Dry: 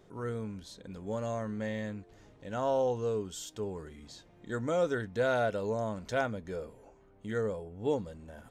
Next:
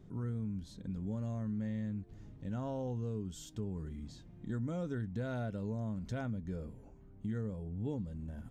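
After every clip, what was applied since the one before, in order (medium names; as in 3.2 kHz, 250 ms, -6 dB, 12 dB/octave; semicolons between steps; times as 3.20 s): FFT filter 170 Hz 0 dB, 250 Hz -3 dB, 480 Hz -16 dB; compression 2.5:1, threshold -45 dBFS, peak gain reduction 7.5 dB; trim +8.5 dB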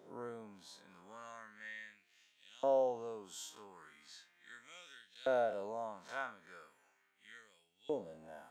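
spectral blur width 87 ms; LFO high-pass saw up 0.38 Hz 520–3500 Hz; trim +5 dB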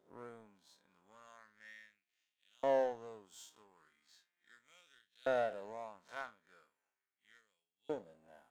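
power-law waveshaper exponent 1.4; trim +1 dB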